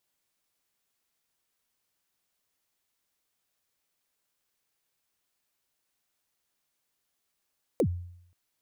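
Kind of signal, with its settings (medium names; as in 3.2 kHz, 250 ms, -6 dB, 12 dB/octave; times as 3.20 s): kick drum length 0.53 s, from 580 Hz, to 88 Hz, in 73 ms, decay 0.71 s, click on, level -19 dB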